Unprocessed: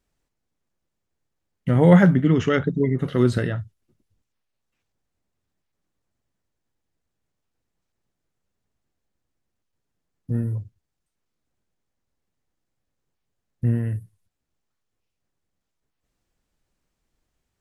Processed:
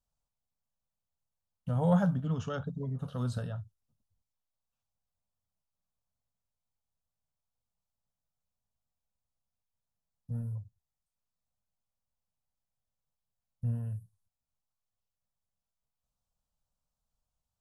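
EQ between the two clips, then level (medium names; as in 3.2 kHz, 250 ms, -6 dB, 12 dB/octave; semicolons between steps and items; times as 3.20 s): static phaser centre 840 Hz, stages 4; -9.0 dB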